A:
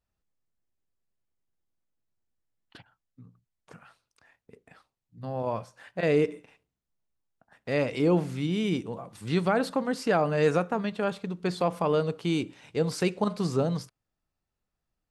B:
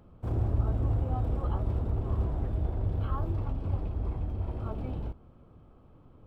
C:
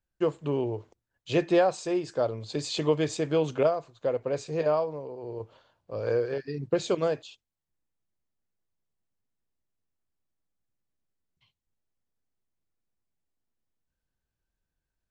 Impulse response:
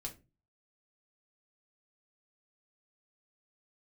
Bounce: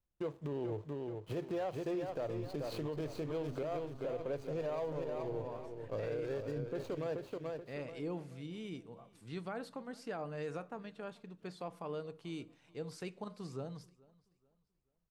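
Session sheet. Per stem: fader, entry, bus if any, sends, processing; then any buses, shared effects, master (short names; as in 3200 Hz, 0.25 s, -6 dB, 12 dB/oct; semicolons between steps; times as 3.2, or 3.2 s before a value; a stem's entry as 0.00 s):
-18.0 dB, 0.00 s, send -10 dB, echo send -23 dB, dry
-18.0 dB, 1.85 s, no send, no echo send, bell 120 Hz -14 dB 1.3 oct; comb 3.3 ms, depth 75%; robotiser 135 Hz
-2.0 dB, 0.00 s, no send, echo send -8 dB, median filter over 25 samples; compressor, threshold -27 dBFS, peak gain reduction 9 dB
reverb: on, RT60 0.30 s, pre-delay 3 ms
echo: feedback echo 0.431 s, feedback 32%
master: limiter -31 dBFS, peak gain reduction 10.5 dB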